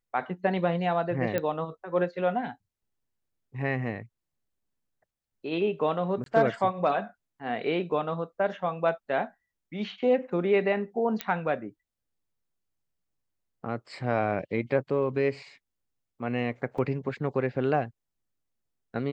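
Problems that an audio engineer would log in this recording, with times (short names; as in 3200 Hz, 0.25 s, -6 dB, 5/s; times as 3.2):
1.38 pop -15 dBFS
6.24–6.26 gap 22 ms
11.21 pop -13 dBFS
16.78 gap 4.4 ms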